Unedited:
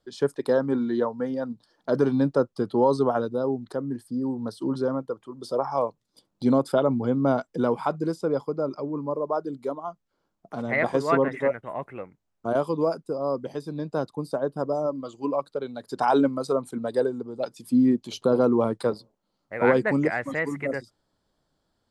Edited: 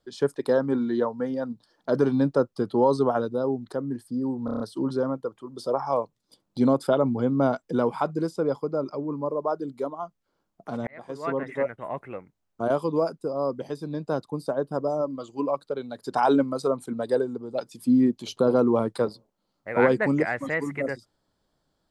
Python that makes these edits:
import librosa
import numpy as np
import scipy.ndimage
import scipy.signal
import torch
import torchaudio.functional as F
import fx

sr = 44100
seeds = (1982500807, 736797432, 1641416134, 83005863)

y = fx.edit(x, sr, fx.stutter(start_s=4.45, slice_s=0.03, count=6),
    fx.fade_in_span(start_s=10.72, length_s=1.0), tone=tone)